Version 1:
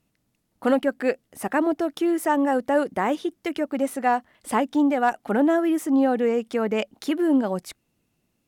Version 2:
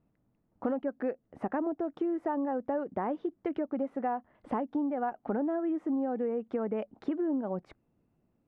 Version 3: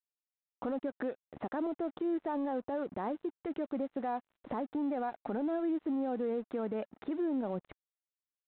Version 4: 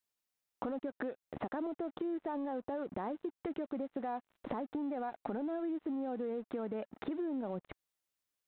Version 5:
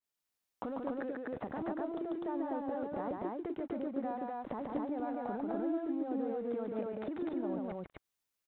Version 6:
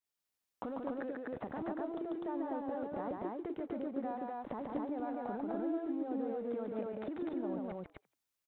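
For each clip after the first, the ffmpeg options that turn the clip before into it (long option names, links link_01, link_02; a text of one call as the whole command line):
ffmpeg -i in.wav -af "lowpass=1100,acompressor=threshold=-29dB:ratio=6" out.wav
ffmpeg -i in.wav -af "alimiter=level_in=7dB:limit=-24dB:level=0:latency=1:release=133,volume=-7dB,aresample=8000,aeval=exprs='sgn(val(0))*max(abs(val(0))-0.00119,0)':channel_layout=same,aresample=44100,volume=4dB" out.wav
ffmpeg -i in.wav -af "acompressor=threshold=-44dB:ratio=4,volume=7dB" out.wav
ffmpeg -i in.wav -af "aecho=1:1:142.9|250.7:0.708|0.891,adynamicequalizer=threshold=0.00178:dfrequency=2100:dqfactor=0.7:tfrequency=2100:tqfactor=0.7:attack=5:release=100:ratio=0.375:range=2.5:mode=cutabove:tftype=highshelf,volume=-2dB" out.wav
ffmpeg -i in.wav -filter_complex "[0:a]asplit=3[link_01][link_02][link_03];[link_02]adelay=83,afreqshift=120,volume=-24dB[link_04];[link_03]adelay=166,afreqshift=240,volume=-32.9dB[link_05];[link_01][link_04][link_05]amix=inputs=3:normalize=0,volume=-1.5dB" out.wav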